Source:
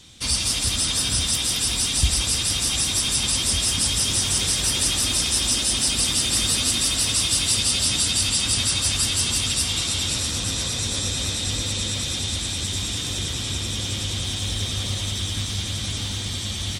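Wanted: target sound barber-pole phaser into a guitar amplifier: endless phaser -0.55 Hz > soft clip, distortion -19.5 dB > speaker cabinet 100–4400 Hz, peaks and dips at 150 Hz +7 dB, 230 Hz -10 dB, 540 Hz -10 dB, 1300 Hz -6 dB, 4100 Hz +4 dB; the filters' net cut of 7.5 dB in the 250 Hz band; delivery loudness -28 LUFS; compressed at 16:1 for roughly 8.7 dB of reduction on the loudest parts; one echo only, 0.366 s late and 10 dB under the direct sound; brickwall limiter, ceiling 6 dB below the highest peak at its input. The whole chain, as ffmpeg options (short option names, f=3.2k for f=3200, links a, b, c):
-filter_complex "[0:a]equalizer=f=250:t=o:g=-8,acompressor=threshold=-22dB:ratio=16,alimiter=limit=-18dB:level=0:latency=1,aecho=1:1:366:0.316,asplit=2[a][b];[b]afreqshift=-0.55[c];[a][c]amix=inputs=2:normalize=1,asoftclip=threshold=-23.5dB,highpass=100,equalizer=f=150:t=q:w=4:g=7,equalizer=f=230:t=q:w=4:g=-10,equalizer=f=540:t=q:w=4:g=-10,equalizer=f=1.3k:t=q:w=4:g=-6,equalizer=f=4.1k:t=q:w=4:g=4,lowpass=f=4.4k:w=0.5412,lowpass=f=4.4k:w=1.3066,volume=4dB"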